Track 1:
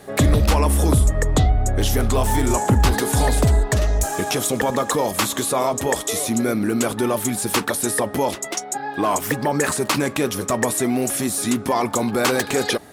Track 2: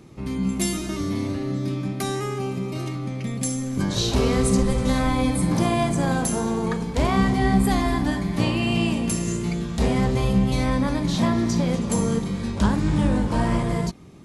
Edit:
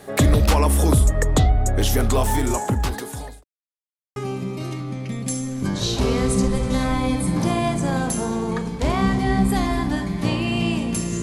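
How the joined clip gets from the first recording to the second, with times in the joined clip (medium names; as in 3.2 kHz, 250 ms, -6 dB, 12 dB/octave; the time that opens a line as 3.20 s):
track 1
2.14–3.44 s: fade out linear
3.44–4.16 s: mute
4.16 s: go over to track 2 from 2.31 s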